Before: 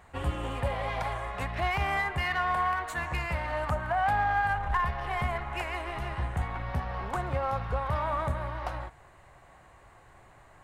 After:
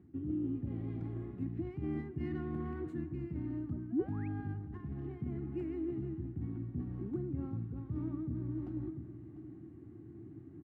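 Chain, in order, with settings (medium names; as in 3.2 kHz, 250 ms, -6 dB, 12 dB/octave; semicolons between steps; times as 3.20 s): treble shelf 4.2 kHz -11 dB; band-stop 990 Hz, Q 7.1; on a send: delay 697 ms -22 dB; on the sum: painted sound rise, 3.92–4.28 s, 210–2700 Hz -30 dBFS; FFT filter 190 Hz 0 dB, 320 Hz +12 dB, 540 Hz -29 dB; reverse; compression 6:1, threshold -42 dBFS, peak gain reduction 20 dB; reverse; high-pass 96 Hz 24 dB/octave; trim +10 dB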